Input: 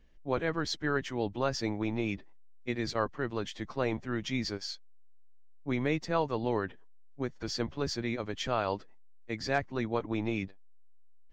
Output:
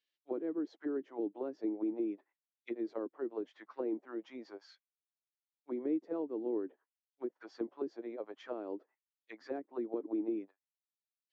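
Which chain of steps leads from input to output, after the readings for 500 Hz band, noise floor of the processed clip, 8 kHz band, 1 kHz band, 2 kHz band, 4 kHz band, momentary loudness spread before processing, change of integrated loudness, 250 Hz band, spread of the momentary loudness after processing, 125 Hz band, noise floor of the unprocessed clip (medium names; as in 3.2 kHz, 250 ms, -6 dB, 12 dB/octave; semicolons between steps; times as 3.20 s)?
-5.5 dB, under -85 dBFS, under -25 dB, -16.0 dB, -20.5 dB, -24.5 dB, 8 LU, -6.0 dB, -3.5 dB, 11 LU, under -25 dB, -50 dBFS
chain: ladder high-pass 250 Hz, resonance 40%; auto-wah 320–4000 Hz, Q 2.3, down, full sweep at -34 dBFS; trim +4 dB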